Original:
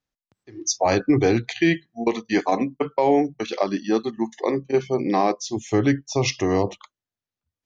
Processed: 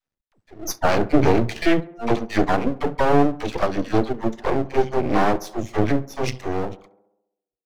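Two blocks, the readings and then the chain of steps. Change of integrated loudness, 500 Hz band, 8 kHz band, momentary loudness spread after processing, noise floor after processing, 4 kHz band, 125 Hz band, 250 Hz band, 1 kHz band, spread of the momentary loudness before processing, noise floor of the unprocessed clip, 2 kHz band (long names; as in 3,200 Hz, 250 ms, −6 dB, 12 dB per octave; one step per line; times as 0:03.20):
+0.5 dB, 0.0 dB, can't be measured, 10 LU, below −85 dBFS, −2.5 dB, +2.0 dB, 0.0 dB, +2.0 dB, 7 LU, below −85 dBFS, +1.0 dB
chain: fade-out on the ending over 2.37 s
high-shelf EQ 2,800 Hz −8.5 dB
all-pass dispersion lows, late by 72 ms, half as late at 400 Hz
half-wave rectification
on a send: tape delay 68 ms, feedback 68%, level −18 dB, low-pass 1,600 Hz
on the sum: level +6 dB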